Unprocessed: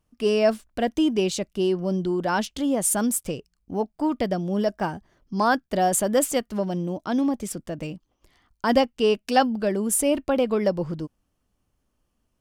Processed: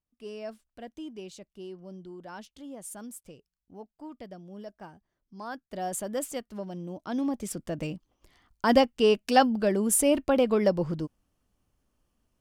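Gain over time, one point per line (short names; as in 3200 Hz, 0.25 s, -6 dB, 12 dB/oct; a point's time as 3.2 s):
5.41 s -19 dB
5.89 s -11 dB
6.76 s -11 dB
7.74 s -1 dB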